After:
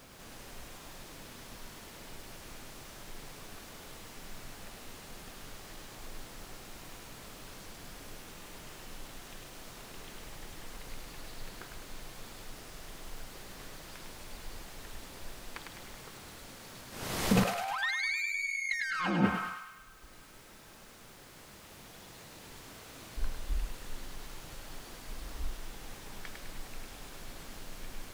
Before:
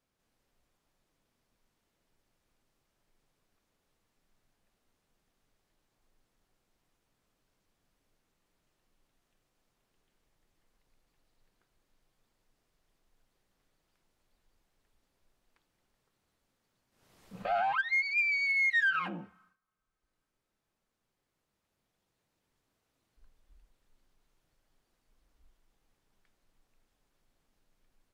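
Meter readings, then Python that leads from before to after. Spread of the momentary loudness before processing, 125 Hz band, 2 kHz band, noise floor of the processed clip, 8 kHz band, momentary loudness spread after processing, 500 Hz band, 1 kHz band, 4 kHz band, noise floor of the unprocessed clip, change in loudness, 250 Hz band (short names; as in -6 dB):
14 LU, +18.0 dB, -4.0 dB, -53 dBFS, n/a, 18 LU, +4.0 dB, -0.5 dB, +7.5 dB, -84 dBFS, -12.0 dB, +16.5 dB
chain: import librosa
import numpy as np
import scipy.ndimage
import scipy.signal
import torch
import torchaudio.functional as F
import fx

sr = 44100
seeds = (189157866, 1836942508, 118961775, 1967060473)

p1 = 10.0 ** (-31.5 / 20.0) * np.tanh(x / 10.0 ** (-31.5 / 20.0))
p2 = fx.over_compress(p1, sr, threshold_db=-50.0, ratio=-1.0)
p3 = p2 + fx.echo_thinned(p2, sr, ms=103, feedback_pct=61, hz=1000.0, wet_db=-3.5, dry=0)
y = F.gain(torch.from_numpy(p3), 18.0).numpy()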